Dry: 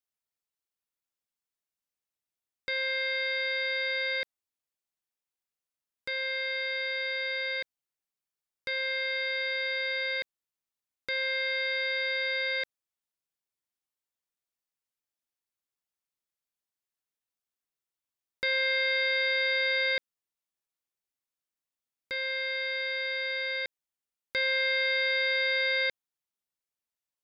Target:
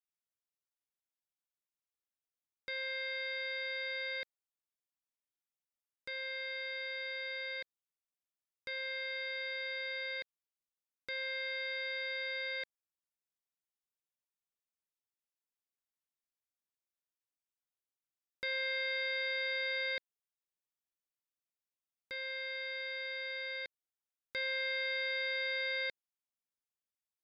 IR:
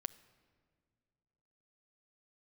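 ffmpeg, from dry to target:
-af "bandreject=frequency=4300:width=20,volume=-8.5dB"

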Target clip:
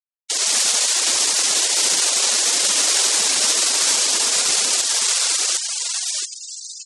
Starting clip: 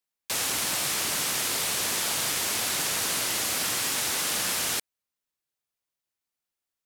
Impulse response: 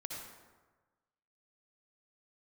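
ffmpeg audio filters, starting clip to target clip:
-filter_complex "[0:a]aecho=1:1:760|1444|2060|2614|3112:0.631|0.398|0.251|0.158|0.1,asetrate=36028,aresample=44100,atempo=1.22405,acrossover=split=720[link_01][link_02];[link_01]acrusher=bits=2:mode=log:mix=0:aa=0.000001[link_03];[link_02]alimiter=limit=-19dB:level=0:latency=1:release=153[link_04];[link_03][link_04]amix=inputs=2:normalize=0,bandreject=frequency=50:width_type=h:width=6,bandreject=frequency=100:width_type=h:width=6,bandreject=frequency=150:width_type=h:width=6,aeval=exprs='sgn(val(0))*max(abs(val(0))-0.00596,0)':channel_layout=same,lowpass=7900,dynaudnorm=framelen=100:gausssize=5:maxgain=16dB,bass=frequency=250:gain=-10,treble=frequency=4000:gain=12,afftfilt=real='re*gte(hypot(re,im),0.158)':imag='im*gte(hypot(re,im),0.158)':win_size=1024:overlap=0.75,volume=-8.5dB"

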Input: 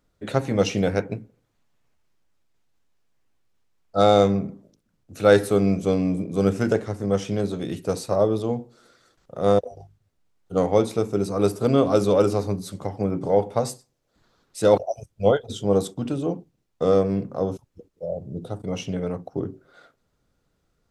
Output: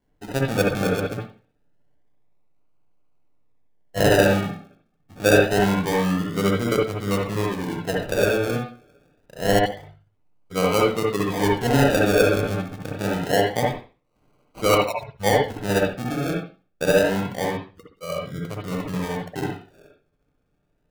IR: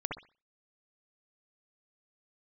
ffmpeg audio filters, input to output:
-filter_complex "[0:a]acrusher=samples=35:mix=1:aa=0.000001:lfo=1:lforange=21:lforate=0.26[link_01];[1:a]atrim=start_sample=2205[link_02];[link_01][link_02]afir=irnorm=-1:irlink=0,volume=-2.5dB"

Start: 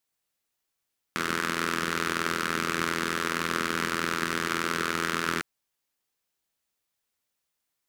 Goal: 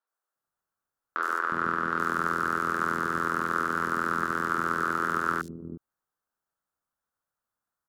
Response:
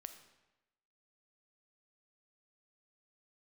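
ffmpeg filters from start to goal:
-filter_complex "[0:a]asettb=1/sr,asplit=3[link_01][link_02][link_03];[link_01]atrim=end=1.324[link_04];[link_02]atrim=start=1.32:end=1.92,asetpts=PTS-STARTPTS,afade=type=in:duration=0.004:curve=qsin,afade=type=out:start_time=0.596:duration=0.004:curve=qsin,acrossover=split=4200[link_05][link_06];[link_06]acompressor=threshold=-47dB:ratio=4:attack=1:release=60[link_07];[link_05][link_07]amix=inputs=2:normalize=0[link_08];[link_03]atrim=start=1.916[link_09];[link_04][link_08]acrossfade=duration=0.004:curve1=hsin:curve2=qsin[link_10];[link_10][link_09]acrossfade=duration=0.004:curve1=qsin:curve2=hsin,highshelf=frequency=1800:width_type=q:width=3:gain=-8.5,acrossover=split=350|4400[link_11][link_12][link_13];[link_13]adelay=70[link_14];[link_11]adelay=360[link_15];[link_15][link_12][link_14]amix=inputs=3:normalize=0,volume=-1.5dB"

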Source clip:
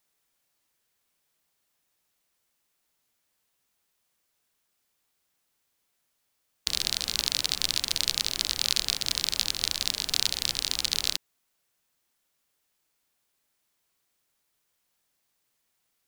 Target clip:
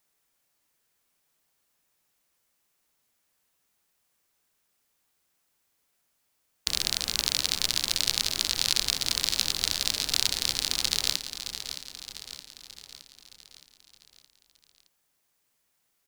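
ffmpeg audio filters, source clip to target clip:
ffmpeg -i in.wav -af "equalizer=frequency=3600:width=1.5:gain=-2,aecho=1:1:618|1236|1854|2472|3090|3708:0.316|0.171|0.0922|0.0498|0.0269|0.0145,volume=1.5dB" out.wav

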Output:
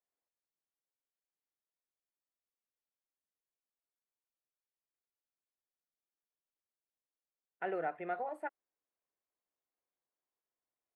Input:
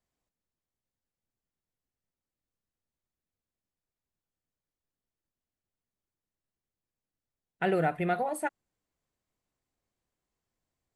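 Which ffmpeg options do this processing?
ffmpeg -i in.wav -filter_complex "[0:a]acrossover=split=310 2400:gain=0.0891 1 0.1[link_01][link_02][link_03];[link_01][link_02][link_03]amix=inputs=3:normalize=0,acrossover=split=3500[link_04][link_05];[link_05]acompressor=threshold=-58dB:ratio=4:attack=1:release=60[link_06];[link_04][link_06]amix=inputs=2:normalize=0,volume=-7.5dB" out.wav

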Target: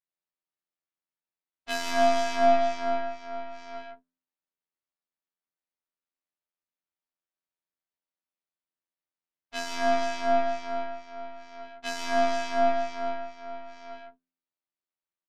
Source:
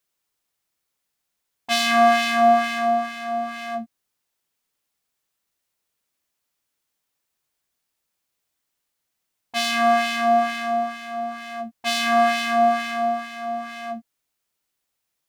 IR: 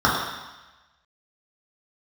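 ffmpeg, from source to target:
-filter_complex "[0:a]lowpass=frequency=3900:width=0.5412,lowpass=frequency=3900:width=1.3066,lowshelf=frequency=87:gain=-9.5,bandreject=frequency=73.2:width_type=h:width=4,bandreject=frequency=146.4:width_type=h:width=4,bandreject=frequency=219.6:width_type=h:width=4,bandreject=frequency=292.8:width_type=h:width=4,bandreject=frequency=366:width_type=h:width=4,bandreject=frequency=439.2:width_type=h:width=4,bandreject=frequency=512.4:width_type=h:width=4,bandreject=frequency=585.6:width_type=h:width=4,bandreject=frequency=658.8:width_type=h:width=4,bandreject=frequency=732:width_type=h:width=4,bandreject=frequency=805.2:width_type=h:width=4,bandreject=frequency=878.4:width_type=h:width=4,bandreject=frequency=951.6:width_type=h:width=4,bandreject=frequency=1024.8:width_type=h:width=4,bandreject=frequency=1098:width_type=h:width=4,bandreject=frequency=1171.2:width_type=h:width=4,bandreject=frequency=1244.4:width_type=h:width=4,bandreject=frequency=1317.6:width_type=h:width=4,bandreject=frequency=1390.8:width_type=h:width=4,bandreject=frequency=1464:width_type=h:width=4,bandreject=frequency=1537.2:width_type=h:width=4,bandreject=frequency=1610.4:width_type=h:width=4,bandreject=frequency=1683.6:width_type=h:width=4,bandreject=frequency=1756.8:width_type=h:width=4,asplit=2[link_01][link_02];[link_02]acompressor=threshold=-30dB:ratio=6,volume=0dB[link_03];[link_01][link_03]amix=inputs=2:normalize=0,aeval=exprs='0.668*(cos(1*acos(clip(val(0)/0.668,-1,1)))-cos(1*PI/2))+0.0596*(cos(6*acos(clip(val(0)/0.668,-1,1)))-cos(6*PI/2))+0.075*(cos(7*acos(clip(val(0)/0.668,-1,1)))-cos(7*PI/2))':channel_layout=same,afftfilt=real='hypot(re,im)*cos(PI*b)':imag='0':win_size=2048:overlap=0.75,aecho=1:1:34.99|119.5|157.4:0.562|0.355|0.501,volume=-6.5dB"

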